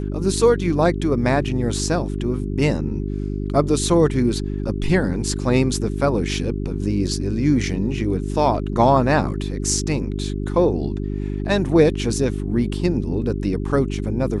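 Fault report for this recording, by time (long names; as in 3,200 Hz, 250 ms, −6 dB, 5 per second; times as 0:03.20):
mains hum 50 Hz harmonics 8 −25 dBFS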